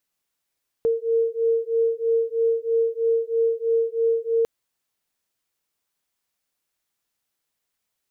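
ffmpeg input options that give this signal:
-f lavfi -i "aevalsrc='0.0794*(sin(2*PI*456*t)+sin(2*PI*459.1*t))':d=3.6:s=44100"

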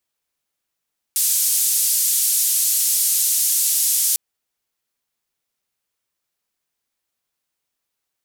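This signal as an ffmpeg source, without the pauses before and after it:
-f lavfi -i "anoisesrc=c=white:d=3:r=44100:seed=1,highpass=f=6800,lowpass=f=13000,volume=-8dB"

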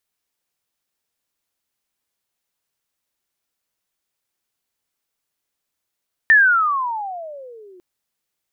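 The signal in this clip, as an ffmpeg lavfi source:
-f lavfi -i "aevalsrc='pow(10,(-7-35*t/1.5)/20)*sin(2*PI*1820*1.5/(-28.5*log(2)/12)*(exp(-28.5*log(2)/12*t/1.5)-1))':d=1.5:s=44100"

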